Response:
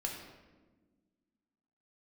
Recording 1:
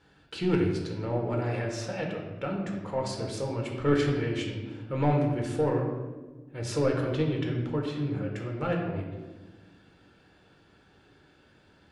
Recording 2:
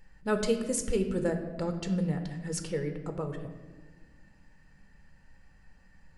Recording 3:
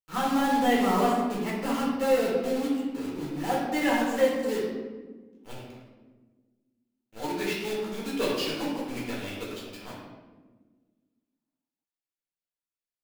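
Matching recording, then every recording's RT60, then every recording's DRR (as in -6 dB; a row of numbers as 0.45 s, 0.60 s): 1; 1.3 s, 1.4 s, 1.3 s; 0.0 dB, 5.5 dB, -6.0 dB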